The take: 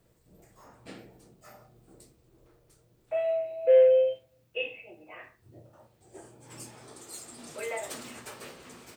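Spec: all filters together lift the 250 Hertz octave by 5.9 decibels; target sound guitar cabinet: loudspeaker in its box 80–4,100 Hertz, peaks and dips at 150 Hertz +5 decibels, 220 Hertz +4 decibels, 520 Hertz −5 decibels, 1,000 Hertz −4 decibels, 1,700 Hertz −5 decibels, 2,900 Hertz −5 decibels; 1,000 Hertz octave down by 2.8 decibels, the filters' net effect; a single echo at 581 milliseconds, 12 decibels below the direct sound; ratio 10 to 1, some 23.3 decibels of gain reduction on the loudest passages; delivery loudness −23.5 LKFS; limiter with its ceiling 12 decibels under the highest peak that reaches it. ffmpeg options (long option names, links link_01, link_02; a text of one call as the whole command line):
ffmpeg -i in.wav -af "equalizer=frequency=250:width_type=o:gain=5,equalizer=frequency=1000:width_type=o:gain=-3,acompressor=threshold=-40dB:ratio=10,alimiter=level_in=17dB:limit=-24dB:level=0:latency=1,volume=-17dB,highpass=80,equalizer=frequency=150:width_type=q:width=4:gain=5,equalizer=frequency=220:width_type=q:width=4:gain=4,equalizer=frequency=520:width_type=q:width=4:gain=-5,equalizer=frequency=1000:width_type=q:width=4:gain=-4,equalizer=frequency=1700:width_type=q:width=4:gain=-5,equalizer=frequency=2900:width_type=q:width=4:gain=-5,lowpass=frequency=4100:width=0.5412,lowpass=frequency=4100:width=1.3066,aecho=1:1:581:0.251,volume=28.5dB" out.wav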